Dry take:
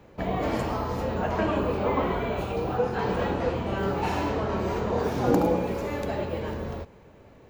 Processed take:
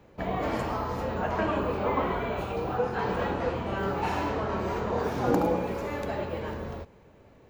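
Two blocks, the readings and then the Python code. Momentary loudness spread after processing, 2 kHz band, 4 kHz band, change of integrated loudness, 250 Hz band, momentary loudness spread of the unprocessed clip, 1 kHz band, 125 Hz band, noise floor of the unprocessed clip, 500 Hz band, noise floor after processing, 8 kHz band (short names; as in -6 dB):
7 LU, -0.5 dB, -2.5 dB, -2.0 dB, -3.0 dB, 7 LU, -0.5 dB, -3.5 dB, -52 dBFS, -2.5 dB, -55 dBFS, n/a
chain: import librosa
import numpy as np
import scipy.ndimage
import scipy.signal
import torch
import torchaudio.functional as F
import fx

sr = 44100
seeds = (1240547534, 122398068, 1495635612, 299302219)

y = fx.dynamic_eq(x, sr, hz=1300.0, q=0.75, threshold_db=-40.0, ratio=4.0, max_db=4)
y = y * librosa.db_to_amplitude(-3.5)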